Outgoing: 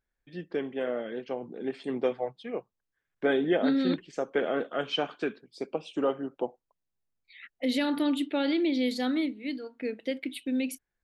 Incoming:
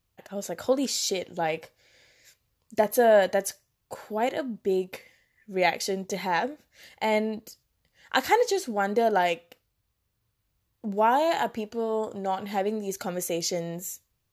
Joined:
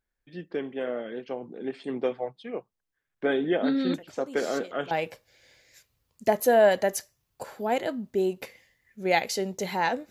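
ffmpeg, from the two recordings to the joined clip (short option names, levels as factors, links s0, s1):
-filter_complex "[1:a]asplit=2[s0][s1];[0:a]apad=whole_dur=10.1,atrim=end=10.1,atrim=end=4.912[s2];[s1]atrim=start=1.418:end=6.61[s3];[s0]atrim=start=0.45:end=1.42,asetpts=PTS-STARTPTS,volume=0.178,afade=t=in:d=0.004:c=hsin,afade=t=out:st=0.966:d=0.004:c=hsin,adelay=3940[s4];[s2][s3]acrossfade=d=0.004:c1=hsin:c2=hsin[s5];[s5][s4]amix=inputs=2:normalize=0"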